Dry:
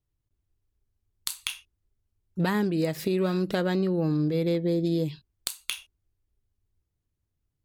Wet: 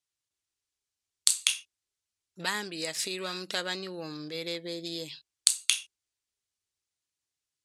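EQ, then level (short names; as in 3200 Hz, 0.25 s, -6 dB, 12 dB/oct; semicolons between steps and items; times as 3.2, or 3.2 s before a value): weighting filter ITU-R 468; dynamic EQ 8200 Hz, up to +6 dB, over -41 dBFS, Q 1.6; -4.0 dB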